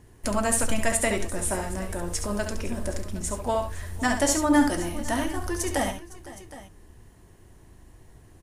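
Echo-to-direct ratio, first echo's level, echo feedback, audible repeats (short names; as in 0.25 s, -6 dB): -7.0 dB, -7.5 dB, no steady repeat, 3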